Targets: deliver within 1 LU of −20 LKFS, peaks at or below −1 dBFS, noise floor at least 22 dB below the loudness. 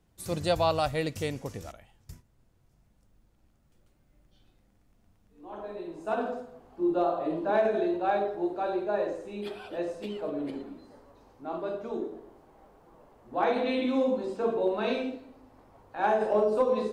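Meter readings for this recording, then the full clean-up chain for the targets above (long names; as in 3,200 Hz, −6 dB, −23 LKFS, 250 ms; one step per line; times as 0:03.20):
integrated loudness −30.0 LKFS; sample peak −14.0 dBFS; target loudness −20.0 LKFS
→ level +10 dB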